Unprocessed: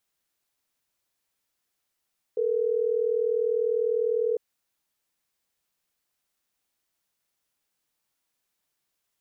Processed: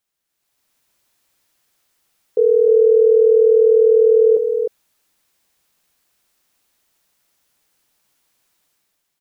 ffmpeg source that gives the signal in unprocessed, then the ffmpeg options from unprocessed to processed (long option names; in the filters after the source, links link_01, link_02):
-f lavfi -i "aevalsrc='0.0562*(sin(2*PI*440*t)+sin(2*PI*480*t))*clip(min(mod(t,6),2-mod(t,6))/0.005,0,1)':duration=3.12:sample_rate=44100"
-filter_complex "[0:a]dynaudnorm=framelen=110:gausssize=9:maxgain=12dB,asplit=2[link_01][link_02];[link_02]aecho=0:1:307:0.531[link_03];[link_01][link_03]amix=inputs=2:normalize=0"